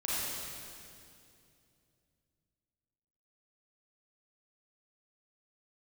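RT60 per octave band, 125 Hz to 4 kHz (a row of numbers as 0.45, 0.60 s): 3.8, 3.2, 2.8, 2.3, 2.3, 2.3 s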